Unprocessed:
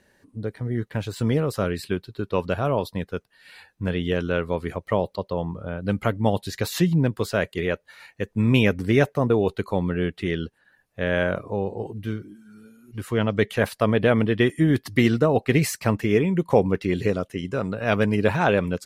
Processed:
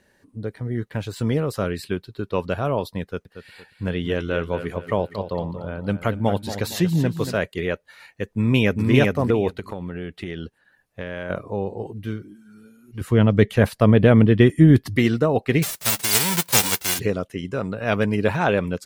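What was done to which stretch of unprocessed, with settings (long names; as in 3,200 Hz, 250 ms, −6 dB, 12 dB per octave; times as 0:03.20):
0:03.02–0:07.38: repeating echo 231 ms, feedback 38%, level −10.5 dB
0:08.24–0:08.90: delay throw 400 ms, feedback 15%, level −2 dB
0:09.59–0:11.30: downward compressor 12 to 1, threshold −25 dBFS
0:13.01–0:14.97: low-shelf EQ 320 Hz +10.5 dB
0:15.62–0:16.98: spectral envelope flattened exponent 0.1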